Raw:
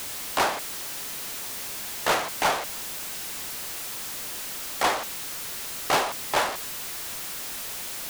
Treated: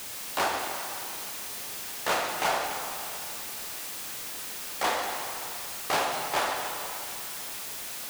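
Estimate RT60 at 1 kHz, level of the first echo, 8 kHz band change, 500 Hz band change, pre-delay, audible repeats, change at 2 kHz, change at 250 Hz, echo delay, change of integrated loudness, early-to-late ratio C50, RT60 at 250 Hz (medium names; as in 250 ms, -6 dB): 2.8 s, no echo, -3.0 dB, -2.5 dB, 3 ms, no echo, -2.5 dB, -3.5 dB, no echo, -2.5 dB, 2.5 dB, 2.7 s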